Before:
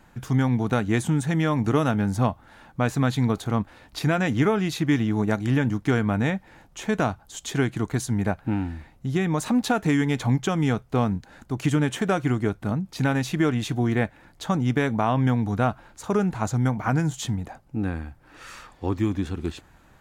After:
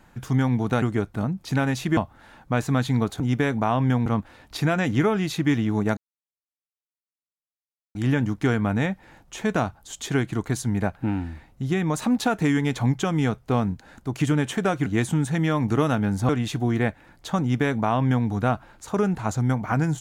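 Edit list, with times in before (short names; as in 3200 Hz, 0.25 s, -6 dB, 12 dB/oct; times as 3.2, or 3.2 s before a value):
0.82–2.25 swap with 12.3–13.45
5.39 insert silence 1.98 s
14.57–15.43 copy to 3.48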